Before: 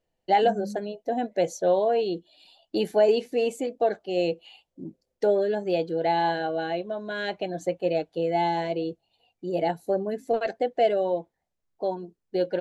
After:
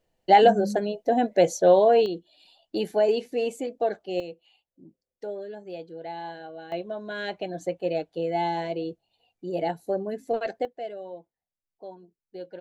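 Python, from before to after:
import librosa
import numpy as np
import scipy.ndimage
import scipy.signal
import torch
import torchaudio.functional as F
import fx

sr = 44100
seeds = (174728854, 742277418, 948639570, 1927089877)

y = fx.gain(x, sr, db=fx.steps((0.0, 5.0), (2.06, -2.0), (4.2, -12.5), (6.72, -2.0), (10.65, -13.5)))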